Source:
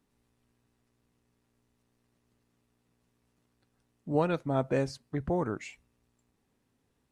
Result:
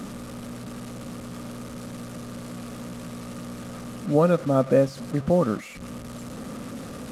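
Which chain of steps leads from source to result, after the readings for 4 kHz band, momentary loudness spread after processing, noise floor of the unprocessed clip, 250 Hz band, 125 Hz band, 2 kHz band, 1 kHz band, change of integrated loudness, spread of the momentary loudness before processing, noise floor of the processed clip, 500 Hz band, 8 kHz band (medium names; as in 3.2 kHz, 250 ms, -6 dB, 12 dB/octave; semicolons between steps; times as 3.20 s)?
+9.0 dB, 17 LU, -76 dBFS, +9.5 dB, +8.5 dB, +5.0 dB, +6.0 dB, +3.5 dB, 12 LU, -39 dBFS, +10.0 dB, +13.5 dB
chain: one-bit delta coder 64 kbps, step -37.5 dBFS; small resonant body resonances 210/530/1200 Hz, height 13 dB, ringing for 25 ms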